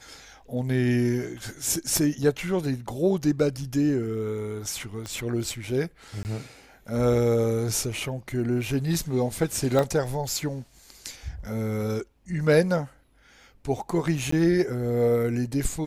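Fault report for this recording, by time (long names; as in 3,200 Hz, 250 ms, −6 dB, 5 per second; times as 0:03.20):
0:01.97: click
0:05.06: click −21 dBFS
0:06.23–0:06.25: drop-out 19 ms
0:09.79: click −12 dBFS
0:14.31–0:14.32: drop-out 14 ms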